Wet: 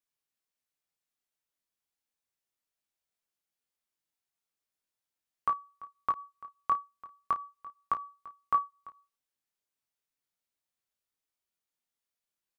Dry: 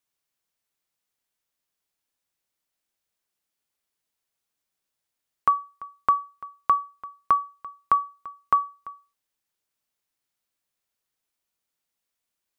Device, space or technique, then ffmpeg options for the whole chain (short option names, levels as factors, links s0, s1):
double-tracked vocal: -filter_complex "[0:a]asplit=2[s0][s1];[s1]adelay=33,volume=0.282[s2];[s0][s2]amix=inputs=2:normalize=0,flanger=delay=19:depth=4.2:speed=0.36,volume=0.596"